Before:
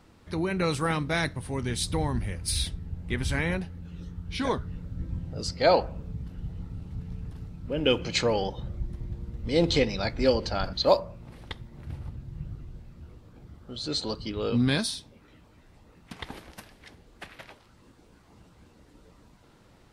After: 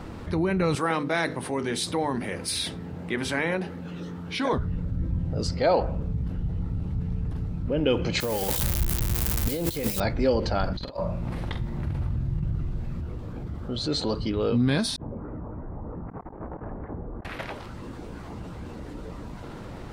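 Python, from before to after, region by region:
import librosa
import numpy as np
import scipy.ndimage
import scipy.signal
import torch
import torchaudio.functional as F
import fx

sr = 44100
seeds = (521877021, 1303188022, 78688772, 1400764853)

y = fx.chain(x, sr, fx.highpass(hz=280.0, slope=12),
    fx.hum_notches(base_hz=50, count=10), at=(0.75, 4.53))
y = fx.chain(y, sr, fx.crossing_spikes(level_db=-16.5),
    fx.high_shelf(hz=8500.0, db=10.5),
    fx.over_compress(threshold_db=-26.0, ratio=-0.5), at=(8.2, 10.0))
y = fx.chain(y, sr, fx.peak_eq(hz=410.0, db=-3.5, octaves=1.2),
    fx.over_compress(threshold_db=-37.0, ratio=-0.5),
    fx.doubler(ms=46.0, db=-9.0), at=(10.76, 13.01))
y = fx.chain(y, sr, fx.over_compress(threshold_db=-51.0, ratio=-0.5),
    fx.cheby2_lowpass(hz=5200.0, order=4, stop_db=70), at=(14.96, 17.25))
y = fx.high_shelf(y, sr, hz=2300.0, db=-10.0)
y = fx.env_flatten(y, sr, amount_pct=50)
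y = y * librosa.db_to_amplitude(-1.0)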